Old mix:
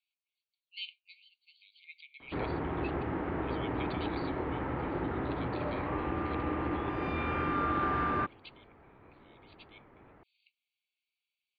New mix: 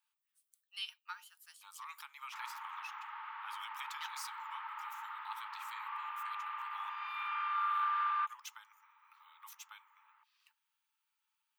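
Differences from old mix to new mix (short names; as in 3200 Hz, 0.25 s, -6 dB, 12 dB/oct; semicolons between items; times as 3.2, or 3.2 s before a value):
speech: remove brick-wall FIR band-pass 2100–4700 Hz; master: add rippled Chebyshev high-pass 860 Hz, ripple 6 dB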